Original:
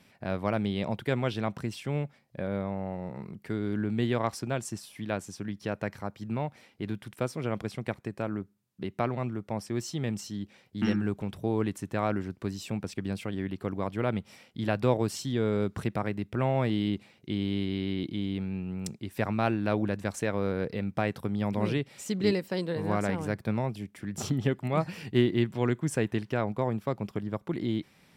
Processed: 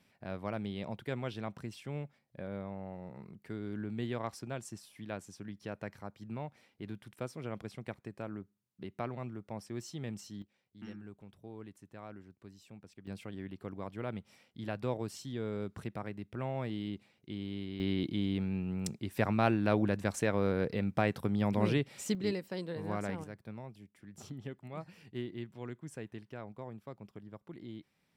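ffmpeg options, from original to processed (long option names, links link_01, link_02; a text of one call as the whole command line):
ffmpeg -i in.wav -af "asetnsamples=nb_out_samples=441:pad=0,asendcmd='10.42 volume volume -19.5dB;13.07 volume volume -10dB;17.8 volume volume -1dB;22.15 volume volume -8dB;23.24 volume volume -16dB',volume=-9dB" out.wav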